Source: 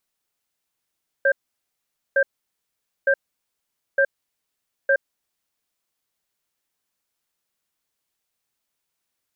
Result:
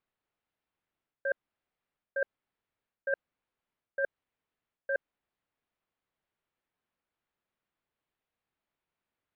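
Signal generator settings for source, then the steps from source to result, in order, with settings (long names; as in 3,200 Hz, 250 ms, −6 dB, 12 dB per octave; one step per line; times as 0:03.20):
tone pair in a cadence 551 Hz, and 1,580 Hz, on 0.07 s, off 0.84 s, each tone −17 dBFS 4.05 s
reversed playback
downward compressor 6 to 1, threshold −27 dBFS
reversed playback
high-frequency loss of the air 430 metres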